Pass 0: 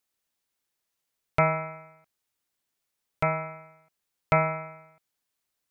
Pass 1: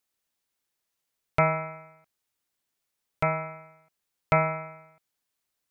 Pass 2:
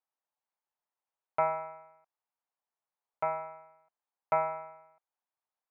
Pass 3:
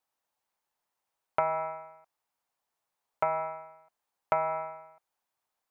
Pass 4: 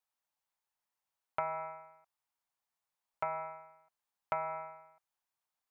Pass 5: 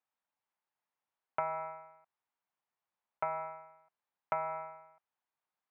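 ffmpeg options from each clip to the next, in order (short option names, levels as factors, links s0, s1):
-af anull
-af "bandpass=f=860:t=q:w=2.3:csg=0"
-af "acompressor=threshold=0.0251:ratio=6,volume=2.51"
-af "equalizer=f=400:t=o:w=1.9:g=-6,volume=0.562"
-af "highpass=110,lowpass=2600,volume=1.12"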